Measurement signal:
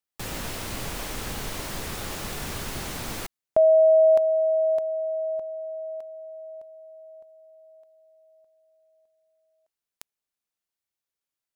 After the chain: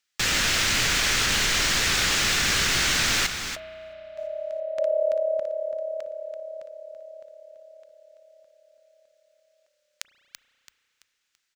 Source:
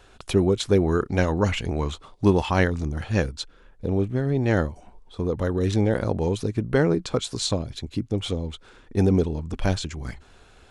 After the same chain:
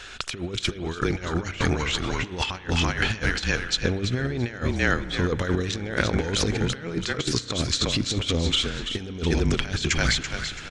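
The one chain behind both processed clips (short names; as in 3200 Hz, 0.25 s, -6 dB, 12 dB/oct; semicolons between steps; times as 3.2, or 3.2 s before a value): band shelf 3200 Hz +13 dB 2.8 oct; on a send: frequency-shifting echo 0.334 s, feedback 38%, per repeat -35 Hz, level -9 dB; on the sum: negative-ratio compressor -25 dBFS, ratio -0.5; spring tank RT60 3 s, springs 33 ms, chirp 50 ms, DRR 16 dB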